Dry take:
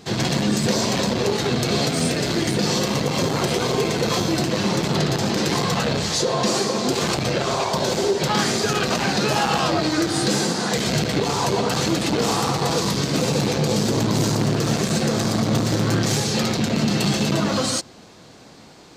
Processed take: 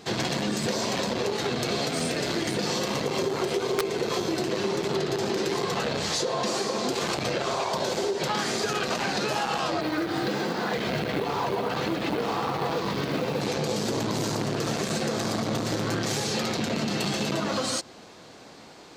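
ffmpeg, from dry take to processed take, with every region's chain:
ffmpeg -i in.wav -filter_complex "[0:a]asettb=1/sr,asplit=3[link_01][link_02][link_03];[link_01]atrim=end=3.064[link_04];[link_02]atrim=start=3.06:end=5.87,asetpts=PTS-STARTPTS,afade=type=in:duration=0.004:curve=qsin,afade=type=out:start_time=2.806:duration=0.004:curve=qsin,equalizer=frequency=390:width=6.3:gain=11.5,aeval=exprs='(mod(2*val(0)+1,2)-1)/2':channel_layout=same[link_05];[link_03]atrim=start=5.866[link_06];[link_04][link_05]acrossfade=duration=0.004:curve1=hsin:curve2=qsin[link_07];[link_07][link_06]acrossfade=duration=0.004:curve1=qsin:curve2=hsin,asettb=1/sr,asplit=3[link_08][link_09][link_10];[link_08]atrim=end=9.814[link_11];[link_09]atrim=start=9.81:end=13.41,asetpts=PTS-STARTPTS,afade=type=in:duration=0.004:curve=qsin,afade=type=out:start_time=3.596:duration=0.004:curve=qsin,lowpass=3200,acrusher=bits=6:mode=log:mix=0:aa=0.000001[link_12];[link_10]atrim=start=13.406[link_13];[link_11][link_12]acrossfade=duration=0.004:curve1=hsin:curve2=qsin[link_14];[link_14][link_13]acrossfade=duration=0.004:curve1=qsin:curve2=hsin,bass=frequency=250:gain=-7,treble=frequency=4000:gain=-3,acompressor=threshold=-24dB:ratio=6" out.wav

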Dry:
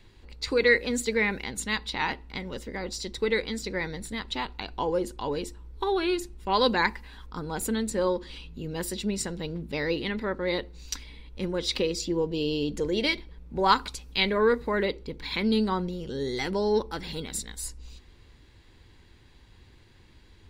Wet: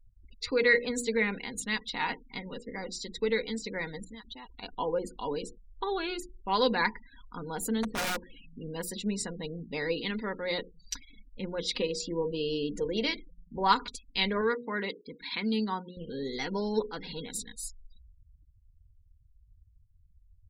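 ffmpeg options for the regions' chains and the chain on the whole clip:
ffmpeg -i in.wav -filter_complex "[0:a]asettb=1/sr,asplit=3[link_01][link_02][link_03];[link_01]atrim=end=4.044[link_04];[link_02]atrim=start=4.04:end=4.63,asetpts=PTS-STARTPTS,afade=type=in:duration=0.004:curve=qsin,afade=type=out:start_time=0.586:duration=0.004:curve=qsin,lowpass=6200,acompressor=threshold=-40dB:ratio=5:attack=3.2:release=140:knee=1:detection=peak,adynamicequalizer=threshold=0.00141:dfrequency=3600:dqfactor=0.7:tfrequency=3600:tqfactor=0.7:attack=5:release=100:ratio=0.375:range=2.5:mode=boostabove:tftype=highshelf[link_05];[link_03]atrim=start=4.626[link_06];[link_04][link_05]acrossfade=duration=0.004:curve1=hsin:curve2=qsin[link_07];[link_07][link_06]acrossfade=duration=0.004:curve1=qsin:curve2=hsin,asettb=1/sr,asplit=3[link_08][link_09][link_10];[link_08]atrim=end=7.834[link_11];[link_09]atrim=start=7.83:end=8.7,asetpts=PTS-STARTPTS,afade=type=in:duration=0.004:curve=qsin,afade=type=out:start_time=0.866:duration=0.004:curve=qsin,lowpass=2400,aeval=exprs='(mod(14.1*val(0)+1,2)-1)/14.1':channel_layout=same[link_12];[link_10]atrim=start=8.696[link_13];[link_11][link_12]acrossfade=duration=0.004:curve1=hsin:curve2=qsin[link_14];[link_14][link_13]acrossfade=duration=0.004:curve1=qsin:curve2=hsin,asettb=1/sr,asplit=3[link_15][link_16][link_17];[link_15]atrim=end=9.964[link_18];[link_16]atrim=start=9.96:end=10.58,asetpts=PTS-STARTPTS,afade=type=in:duration=0.004:curve=qsin,afade=type=out:start_time=0.616:duration=0.004:curve=qsin,aemphasis=mode=production:type=50fm,bandreject=frequency=5900:width=12[link_19];[link_17]atrim=start=10.576[link_20];[link_18][link_19]acrossfade=duration=0.004:curve1=hsin:curve2=qsin[link_21];[link_21][link_20]acrossfade=duration=0.004:curve1=qsin:curve2=hsin,asettb=1/sr,asplit=3[link_22][link_23][link_24];[link_22]atrim=end=14.414[link_25];[link_23]atrim=start=14.41:end=15.97,asetpts=PTS-STARTPTS,afade=type=in:duration=0.004:curve=qsin,afade=type=out:start_time=1.556:duration=0.004:curve=qsin,highpass=frequency=220:poles=1,equalizer=frequency=530:width_type=o:width=0.75:gain=-5.5[link_26];[link_24]atrim=start=15.966[link_27];[link_25][link_26]acrossfade=duration=0.004:curve1=hsin:curve2=qsin[link_28];[link_28][link_27]acrossfade=duration=0.004:curve1=qsin:curve2=hsin,bandreject=frequency=60:width_type=h:width=6,bandreject=frequency=120:width_type=h:width=6,bandreject=frequency=180:width_type=h:width=6,bandreject=frequency=240:width_type=h:width=6,bandreject=frequency=300:width_type=h:width=6,bandreject=frequency=360:width_type=h:width=6,bandreject=frequency=420:width_type=h:width=6,bandreject=frequency=480:width_type=h:width=6,afftfilt=real='re*gte(hypot(re,im),0.00891)':imag='im*gte(hypot(re,im),0.00891)':win_size=1024:overlap=0.75,aecho=1:1:4.2:0.42,volume=-4dB" out.wav

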